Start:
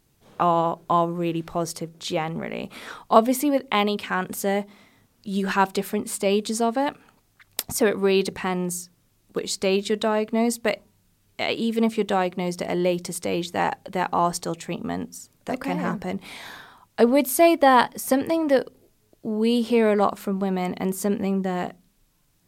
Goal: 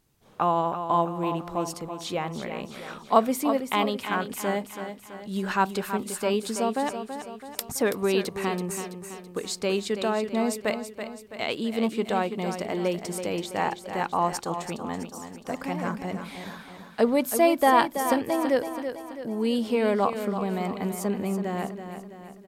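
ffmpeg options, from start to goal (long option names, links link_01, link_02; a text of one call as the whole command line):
ffmpeg -i in.wav -filter_complex "[0:a]equalizer=frequency=1100:width=1.5:gain=2,asplit=2[link_01][link_02];[link_02]aecho=0:1:330|660|990|1320|1650|1980:0.355|0.181|0.0923|0.0471|0.024|0.0122[link_03];[link_01][link_03]amix=inputs=2:normalize=0,volume=-4.5dB" out.wav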